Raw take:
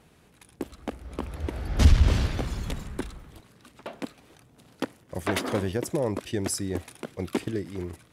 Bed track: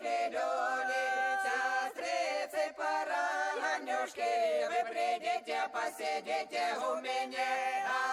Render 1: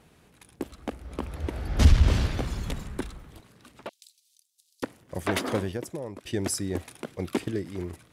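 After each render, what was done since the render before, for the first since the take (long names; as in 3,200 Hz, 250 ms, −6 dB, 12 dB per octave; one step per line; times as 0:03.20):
0:03.89–0:04.83: inverse Chebyshev high-pass filter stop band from 1,300 Hz, stop band 60 dB
0:05.54–0:06.25: fade out quadratic, to −11.5 dB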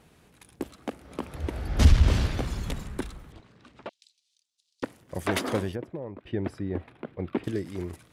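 0:00.71–0:01.35: high-pass filter 130 Hz
0:03.32–0:04.84: high-frequency loss of the air 110 metres
0:05.75–0:07.44: high-frequency loss of the air 490 metres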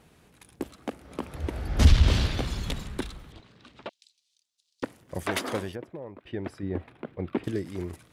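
0:01.87–0:03.88: parametric band 3,700 Hz +6.5 dB 1.1 octaves
0:05.23–0:06.63: low-shelf EQ 420 Hz −6 dB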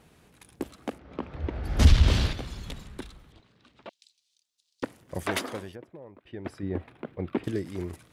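0:00.98–0:01.64: high-frequency loss of the air 200 metres
0:02.33–0:03.88: clip gain −7 dB
0:05.46–0:06.45: clip gain −6 dB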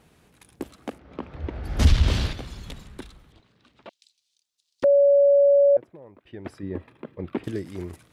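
0:04.84–0:05.77: beep over 565 Hz −13 dBFS
0:06.58–0:07.24: notch comb filter 730 Hz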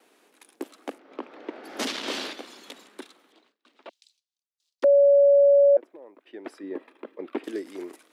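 noise gate with hold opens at −50 dBFS
Butterworth high-pass 270 Hz 36 dB per octave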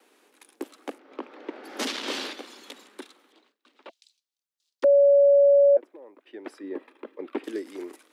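high-pass filter 200 Hz 24 dB per octave
notch filter 670 Hz, Q 12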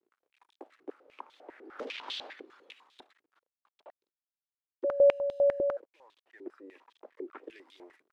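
bit reduction 9 bits
band-pass on a step sequencer 10 Hz 370–3,500 Hz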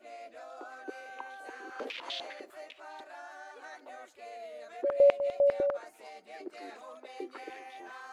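mix in bed track −14 dB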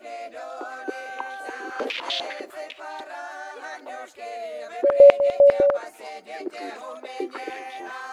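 level +11 dB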